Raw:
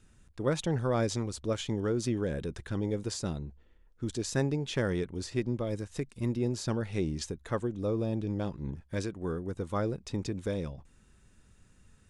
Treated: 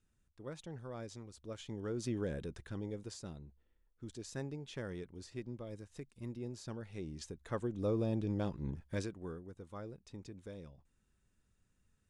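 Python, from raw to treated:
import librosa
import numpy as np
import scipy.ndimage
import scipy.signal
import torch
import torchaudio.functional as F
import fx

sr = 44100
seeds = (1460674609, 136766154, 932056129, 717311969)

y = fx.gain(x, sr, db=fx.line((1.31, -17.0), (2.21, -5.5), (3.27, -13.0), (7.02, -13.0), (7.83, -3.0), (8.9, -3.0), (9.55, -15.5)))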